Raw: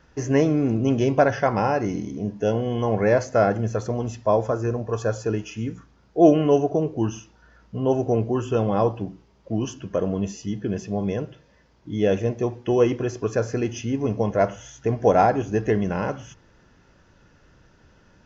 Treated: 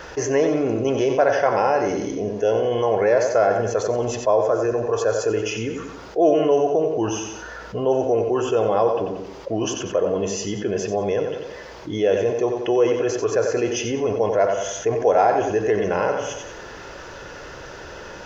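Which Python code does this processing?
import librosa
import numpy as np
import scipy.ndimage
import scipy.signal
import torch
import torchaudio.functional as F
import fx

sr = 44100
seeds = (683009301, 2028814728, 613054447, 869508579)

p1 = fx.low_shelf_res(x, sr, hz=310.0, db=-10.0, q=1.5)
p2 = p1 + fx.echo_feedback(p1, sr, ms=91, feedback_pct=34, wet_db=-9, dry=0)
p3 = fx.env_flatten(p2, sr, amount_pct=50)
y = p3 * librosa.db_to_amplitude(-3.0)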